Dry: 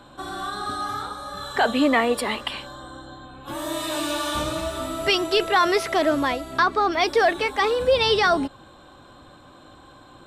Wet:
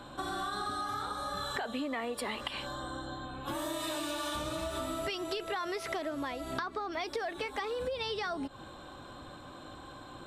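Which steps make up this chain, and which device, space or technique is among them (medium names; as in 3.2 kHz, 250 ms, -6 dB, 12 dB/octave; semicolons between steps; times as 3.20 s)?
serial compression, peaks first (compression, threshold -28 dBFS, peak gain reduction 13 dB; compression 3:1, threshold -34 dBFS, peak gain reduction 7 dB)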